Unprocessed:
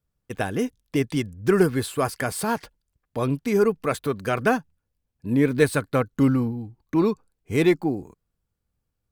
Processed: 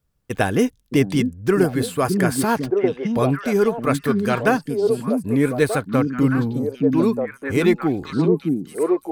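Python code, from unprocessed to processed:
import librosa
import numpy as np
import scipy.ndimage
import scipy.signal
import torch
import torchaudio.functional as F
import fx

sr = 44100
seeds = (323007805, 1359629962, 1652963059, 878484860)

y = fx.echo_stepped(x, sr, ms=617, hz=210.0, octaves=1.4, feedback_pct=70, wet_db=0)
y = fx.rider(y, sr, range_db=5, speed_s=0.5)
y = F.gain(torch.from_numpy(y), 3.0).numpy()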